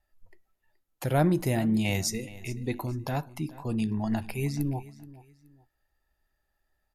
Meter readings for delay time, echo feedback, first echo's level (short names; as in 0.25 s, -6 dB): 0.425 s, 29%, -18.5 dB